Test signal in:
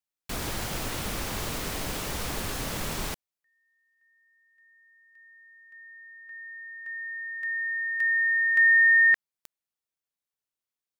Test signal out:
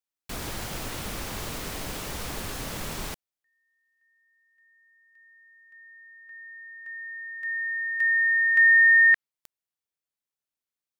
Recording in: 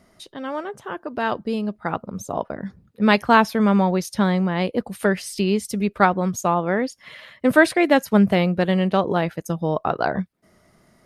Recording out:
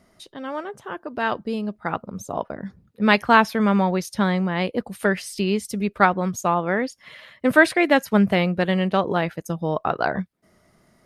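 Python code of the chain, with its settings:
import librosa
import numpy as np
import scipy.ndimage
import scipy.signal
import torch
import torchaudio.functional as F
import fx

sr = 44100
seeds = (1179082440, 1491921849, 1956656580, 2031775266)

y = fx.dynamic_eq(x, sr, hz=2000.0, q=0.71, threshold_db=-31.0, ratio=4.0, max_db=4)
y = y * 10.0 ** (-2.0 / 20.0)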